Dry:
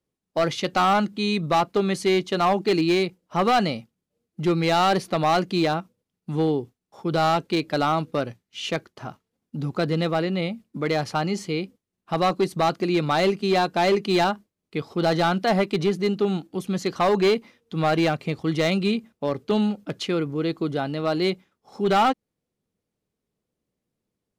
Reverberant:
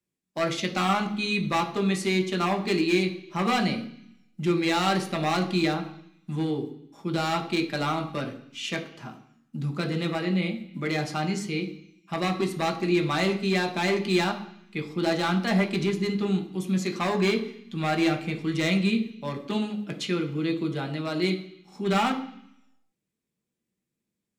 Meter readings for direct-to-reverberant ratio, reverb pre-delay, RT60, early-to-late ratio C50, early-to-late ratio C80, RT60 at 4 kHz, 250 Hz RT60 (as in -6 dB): 3.0 dB, 3 ms, 0.65 s, 11.5 dB, 14.5 dB, 1.1 s, 0.95 s